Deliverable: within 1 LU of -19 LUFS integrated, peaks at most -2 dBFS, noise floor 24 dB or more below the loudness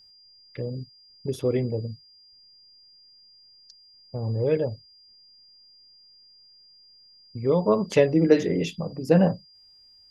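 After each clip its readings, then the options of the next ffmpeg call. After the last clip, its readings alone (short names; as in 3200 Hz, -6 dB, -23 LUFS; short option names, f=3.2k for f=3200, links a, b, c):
steady tone 4800 Hz; tone level -52 dBFS; loudness -24.5 LUFS; peak -5.0 dBFS; loudness target -19.0 LUFS
-> -af "bandreject=f=4.8k:w=30"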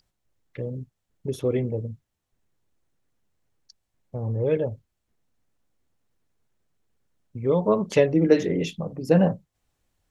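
steady tone none; loudness -24.0 LUFS; peak -5.0 dBFS; loudness target -19.0 LUFS
-> -af "volume=5dB,alimiter=limit=-2dB:level=0:latency=1"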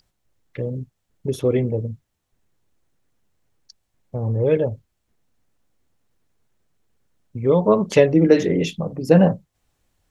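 loudness -19.5 LUFS; peak -2.0 dBFS; noise floor -75 dBFS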